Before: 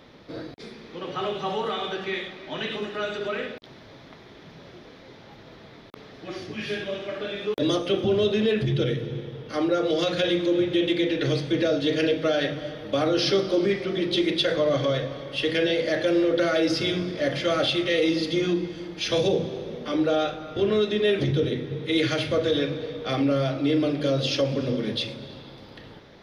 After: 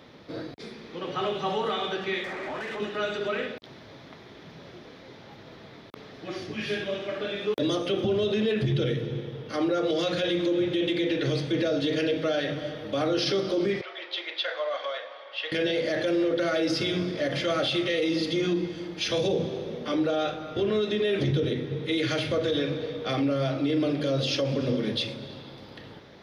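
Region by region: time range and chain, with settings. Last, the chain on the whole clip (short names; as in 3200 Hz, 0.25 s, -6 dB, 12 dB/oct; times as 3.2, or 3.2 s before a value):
2.24–2.8 band shelf 3800 Hz -11 dB 1.2 oct + compressor, threshold -37 dBFS + overdrive pedal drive 24 dB, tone 2100 Hz, clips at -26 dBFS
13.81–15.52 HPF 690 Hz 24 dB/oct + air absorption 220 m
whole clip: HPF 58 Hz; limiter -18 dBFS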